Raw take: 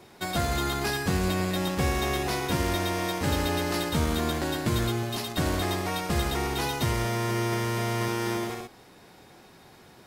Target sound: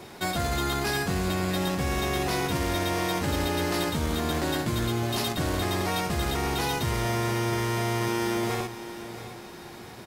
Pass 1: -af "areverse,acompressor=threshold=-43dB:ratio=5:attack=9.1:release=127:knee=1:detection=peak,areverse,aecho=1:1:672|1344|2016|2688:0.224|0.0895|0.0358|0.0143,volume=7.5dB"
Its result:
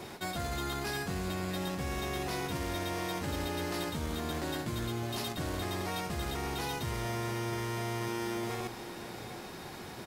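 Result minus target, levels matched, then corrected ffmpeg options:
downward compressor: peak gain reduction +8 dB
-af "areverse,acompressor=threshold=-33dB:ratio=5:attack=9.1:release=127:knee=1:detection=peak,areverse,aecho=1:1:672|1344|2016|2688:0.224|0.0895|0.0358|0.0143,volume=7.5dB"

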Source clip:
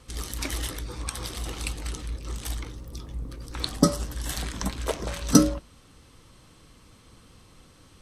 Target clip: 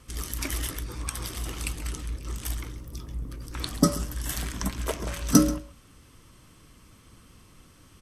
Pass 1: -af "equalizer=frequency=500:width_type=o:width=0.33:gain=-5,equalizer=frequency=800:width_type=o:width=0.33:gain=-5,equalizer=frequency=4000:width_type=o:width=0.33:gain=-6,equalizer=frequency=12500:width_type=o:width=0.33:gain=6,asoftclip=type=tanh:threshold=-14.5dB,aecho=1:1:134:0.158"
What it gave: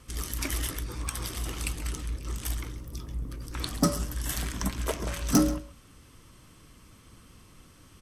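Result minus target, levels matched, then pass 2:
soft clipping: distortion +13 dB
-af "equalizer=frequency=500:width_type=o:width=0.33:gain=-5,equalizer=frequency=800:width_type=o:width=0.33:gain=-5,equalizer=frequency=4000:width_type=o:width=0.33:gain=-6,equalizer=frequency=12500:width_type=o:width=0.33:gain=6,asoftclip=type=tanh:threshold=-3.5dB,aecho=1:1:134:0.158"

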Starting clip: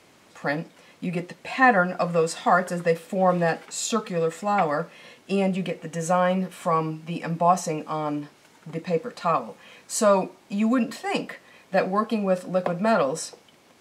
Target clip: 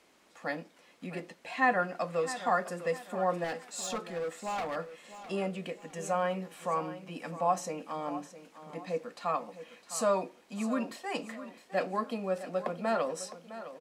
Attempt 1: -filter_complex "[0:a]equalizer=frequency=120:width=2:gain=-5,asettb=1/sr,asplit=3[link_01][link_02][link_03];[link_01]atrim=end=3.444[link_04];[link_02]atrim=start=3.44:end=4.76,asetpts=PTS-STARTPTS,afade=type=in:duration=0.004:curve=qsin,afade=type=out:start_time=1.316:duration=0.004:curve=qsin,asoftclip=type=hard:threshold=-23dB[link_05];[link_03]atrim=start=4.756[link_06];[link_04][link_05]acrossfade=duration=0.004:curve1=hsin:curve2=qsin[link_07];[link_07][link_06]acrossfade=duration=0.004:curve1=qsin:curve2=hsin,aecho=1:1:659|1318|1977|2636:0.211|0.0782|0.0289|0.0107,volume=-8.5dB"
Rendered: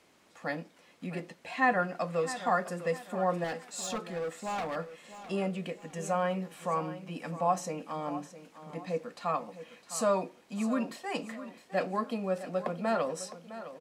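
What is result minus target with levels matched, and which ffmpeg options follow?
125 Hz band +3.5 dB
-filter_complex "[0:a]equalizer=frequency=120:width=2:gain=-16,asettb=1/sr,asplit=3[link_01][link_02][link_03];[link_01]atrim=end=3.444[link_04];[link_02]atrim=start=3.44:end=4.76,asetpts=PTS-STARTPTS,afade=type=in:duration=0.004:curve=qsin,afade=type=out:start_time=1.316:duration=0.004:curve=qsin,asoftclip=type=hard:threshold=-23dB[link_05];[link_03]atrim=start=4.756[link_06];[link_04][link_05]acrossfade=duration=0.004:curve1=hsin:curve2=qsin[link_07];[link_07][link_06]acrossfade=duration=0.004:curve1=qsin:curve2=hsin,aecho=1:1:659|1318|1977|2636:0.211|0.0782|0.0289|0.0107,volume=-8.5dB"

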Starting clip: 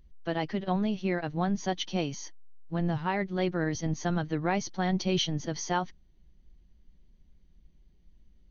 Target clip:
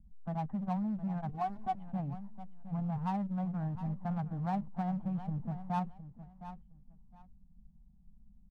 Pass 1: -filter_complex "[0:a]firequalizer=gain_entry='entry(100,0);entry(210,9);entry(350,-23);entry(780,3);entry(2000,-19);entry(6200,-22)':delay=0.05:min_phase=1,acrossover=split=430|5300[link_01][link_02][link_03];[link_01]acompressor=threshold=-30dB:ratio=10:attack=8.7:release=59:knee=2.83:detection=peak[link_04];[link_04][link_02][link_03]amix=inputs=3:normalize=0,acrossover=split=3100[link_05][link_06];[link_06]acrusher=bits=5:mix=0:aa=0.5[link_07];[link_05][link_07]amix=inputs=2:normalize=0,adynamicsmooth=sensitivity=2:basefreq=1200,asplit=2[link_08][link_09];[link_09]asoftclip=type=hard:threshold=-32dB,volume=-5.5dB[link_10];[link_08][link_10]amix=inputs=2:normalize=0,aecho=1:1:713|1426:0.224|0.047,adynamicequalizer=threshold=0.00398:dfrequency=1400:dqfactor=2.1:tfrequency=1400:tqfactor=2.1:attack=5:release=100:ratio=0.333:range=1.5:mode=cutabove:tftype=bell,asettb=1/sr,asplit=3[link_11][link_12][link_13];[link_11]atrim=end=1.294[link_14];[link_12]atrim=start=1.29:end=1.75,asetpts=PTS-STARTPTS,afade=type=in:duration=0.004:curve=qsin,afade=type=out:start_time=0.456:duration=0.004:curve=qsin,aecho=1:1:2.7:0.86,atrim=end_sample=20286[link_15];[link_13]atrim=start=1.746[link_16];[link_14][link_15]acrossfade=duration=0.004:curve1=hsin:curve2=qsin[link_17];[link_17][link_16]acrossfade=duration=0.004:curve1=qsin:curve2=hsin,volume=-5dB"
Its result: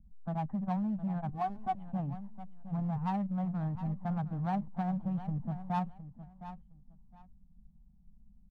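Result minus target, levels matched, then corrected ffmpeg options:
hard clipping: distortion −5 dB
-filter_complex "[0:a]firequalizer=gain_entry='entry(100,0);entry(210,9);entry(350,-23);entry(780,3);entry(2000,-19);entry(6200,-22)':delay=0.05:min_phase=1,acrossover=split=430|5300[link_01][link_02][link_03];[link_01]acompressor=threshold=-30dB:ratio=10:attack=8.7:release=59:knee=2.83:detection=peak[link_04];[link_04][link_02][link_03]amix=inputs=3:normalize=0,acrossover=split=3100[link_05][link_06];[link_06]acrusher=bits=5:mix=0:aa=0.5[link_07];[link_05][link_07]amix=inputs=2:normalize=0,adynamicsmooth=sensitivity=2:basefreq=1200,asplit=2[link_08][link_09];[link_09]asoftclip=type=hard:threshold=-40dB,volume=-5.5dB[link_10];[link_08][link_10]amix=inputs=2:normalize=0,aecho=1:1:713|1426:0.224|0.047,adynamicequalizer=threshold=0.00398:dfrequency=1400:dqfactor=2.1:tfrequency=1400:tqfactor=2.1:attack=5:release=100:ratio=0.333:range=1.5:mode=cutabove:tftype=bell,asettb=1/sr,asplit=3[link_11][link_12][link_13];[link_11]atrim=end=1.294[link_14];[link_12]atrim=start=1.29:end=1.75,asetpts=PTS-STARTPTS,afade=type=in:duration=0.004:curve=qsin,afade=type=out:start_time=0.456:duration=0.004:curve=qsin,aecho=1:1:2.7:0.86,atrim=end_sample=20286[link_15];[link_13]atrim=start=1.746[link_16];[link_14][link_15]acrossfade=duration=0.004:curve1=hsin:curve2=qsin[link_17];[link_17][link_16]acrossfade=duration=0.004:curve1=qsin:curve2=hsin,volume=-5dB"

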